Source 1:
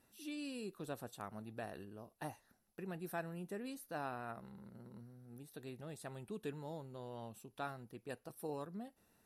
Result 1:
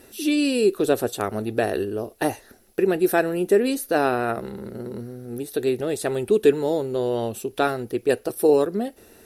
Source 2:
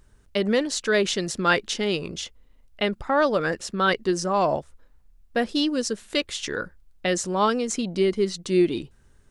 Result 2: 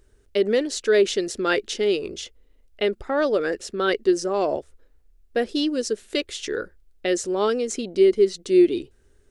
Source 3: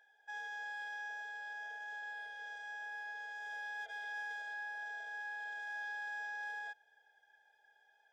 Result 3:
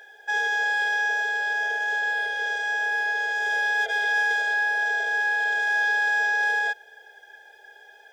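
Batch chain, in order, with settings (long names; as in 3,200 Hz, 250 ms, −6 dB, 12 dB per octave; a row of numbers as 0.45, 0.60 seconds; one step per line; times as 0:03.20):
graphic EQ with 15 bands 160 Hz −11 dB, 400 Hz +9 dB, 1,000 Hz −7 dB
loudness normalisation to −23 LKFS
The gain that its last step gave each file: +22.5, −1.5, +21.5 decibels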